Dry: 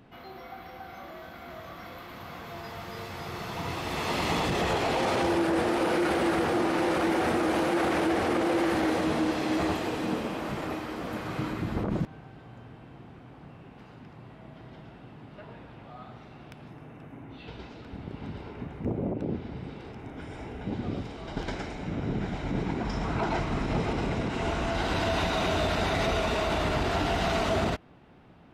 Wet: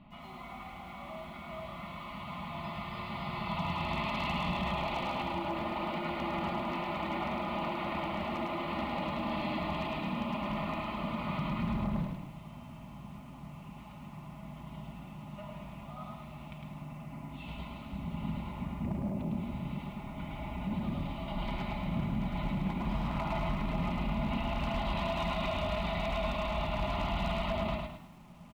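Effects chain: elliptic low-pass 4900 Hz, stop band 40 dB; high shelf 2200 Hz -6 dB; notch 780 Hz, Q 12; comb 4.9 ms, depth 58%; de-hum 122 Hz, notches 36; limiter -27 dBFS, peak gain reduction 10.5 dB; fixed phaser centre 1600 Hz, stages 6; wavefolder -30.5 dBFS; on a send: frequency-shifting echo 0.106 s, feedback 52%, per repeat +35 Hz, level -18.5 dB; on the sum: lo-fi delay 0.106 s, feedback 35%, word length 11-bit, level -4 dB; gain +3.5 dB

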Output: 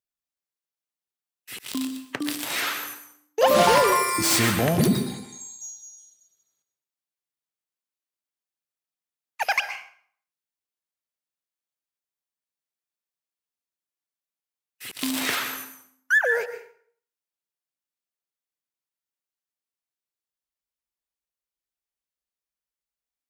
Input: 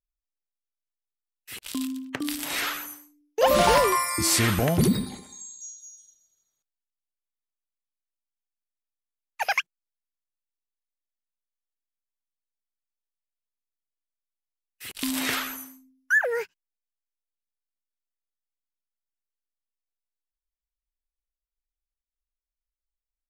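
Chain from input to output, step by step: tracing distortion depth 0.039 ms; HPF 120 Hz 12 dB/oct; plate-style reverb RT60 0.55 s, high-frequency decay 0.8×, pre-delay 0.105 s, DRR 9 dB; gain +1.5 dB

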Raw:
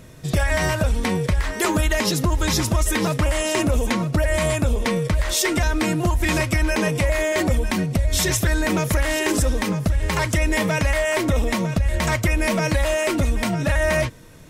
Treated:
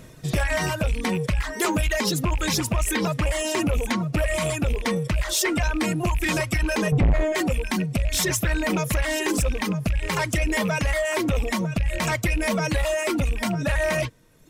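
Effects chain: rattling part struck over -20 dBFS, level -17 dBFS; 6.92–7.35 RIAA curve playback; reverb removal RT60 1.2 s; bell 83 Hz -8 dB 0.3 oct; soft clip -15 dBFS, distortion -7 dB

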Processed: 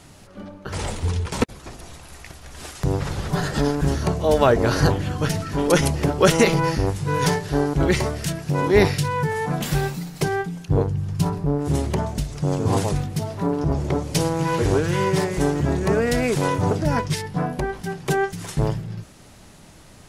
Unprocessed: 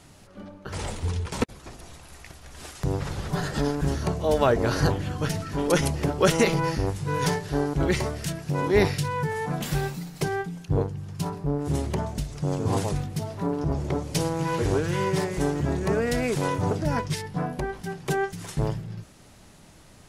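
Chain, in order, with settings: 10.87–11.45 low shelf 130 Hz +10 dB; gain +4.5 dB

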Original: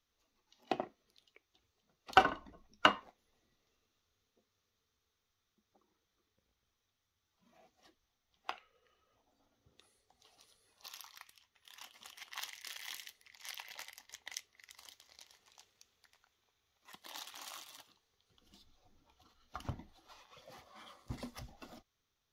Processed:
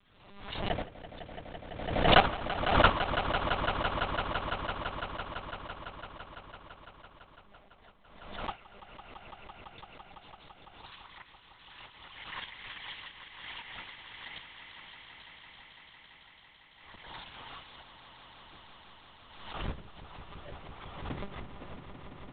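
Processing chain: half-waves squared off; monotone LPC vocoder at 8 kHz 200 Hz; swelling echo 0.168 s, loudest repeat 5, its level -12 dB; backwards sustainer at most 58 dB/s

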